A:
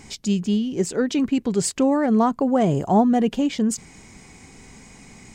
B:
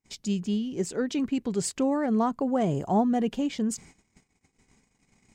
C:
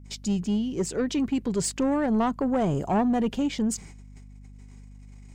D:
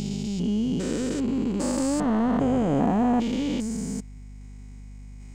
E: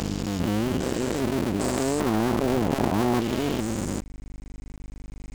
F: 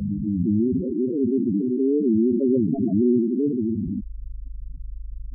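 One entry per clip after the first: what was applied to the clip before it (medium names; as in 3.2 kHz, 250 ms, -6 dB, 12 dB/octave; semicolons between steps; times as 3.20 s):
gate -42 dBFS, range -37 dB; trim -6.5 dB
saturation -21.5 dBFS, distortion -15 dB; hum 50 Hz, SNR 19 dB; trim +3.5 dB
spectrogram pixelated in time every 400 ms; trim +5.5 dB
cycle switcher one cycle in 2, muted; compression 1.5:1, threshold -32 dBFS, peak gain reduction 5 dB; trim +6 dB
loudest bins only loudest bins 4; trim +7 dB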